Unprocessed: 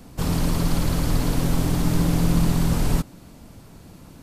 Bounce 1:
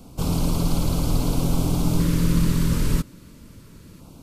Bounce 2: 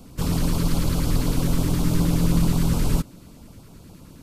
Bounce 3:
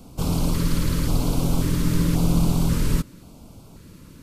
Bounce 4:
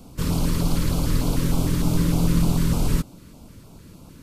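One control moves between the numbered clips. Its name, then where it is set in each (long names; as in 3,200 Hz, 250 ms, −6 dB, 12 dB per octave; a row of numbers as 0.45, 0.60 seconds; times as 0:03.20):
auto-filter notch, speed: 0.25, 9.5, 0.93, 3.3 Hertz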